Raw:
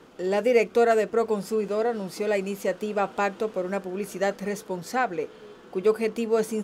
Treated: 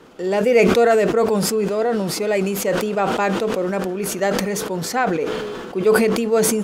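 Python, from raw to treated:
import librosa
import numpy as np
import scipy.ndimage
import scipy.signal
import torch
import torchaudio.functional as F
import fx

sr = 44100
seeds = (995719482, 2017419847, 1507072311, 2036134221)

y = fx.sustainer(x, sr, db_per_s=26.0)
y = y * librosa.db_to_amplitude(4.5)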